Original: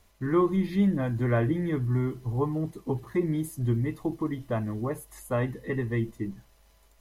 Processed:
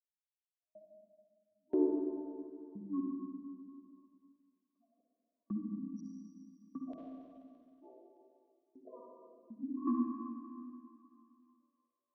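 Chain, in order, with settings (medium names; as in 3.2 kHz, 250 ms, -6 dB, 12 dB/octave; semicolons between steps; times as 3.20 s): local Wiener filter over 15 samples; spectral gate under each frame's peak -20 dB strong; elliptic high-pass 410 Hz, stop band 40 dB; treble shelf 3.5 kHz -8.5 dB; LFO high-pass square 0.5 Hz 560–5800 Hz; saturation -15.5 dBFS, distortion -20 dB; trance gate "...x..xx" 104 bpm -60 dB; feedback echo behind a high-pass 178 ms, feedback 44%, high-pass 1.5 kHz, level -21 dB; Schroeder reverb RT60 0.97 s, combs from 27 ms, DRR -1.5 dB; speed mistake 78 rpm record played at 45 rpm; three bands compressed up and down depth 40%; trim +2.5 dB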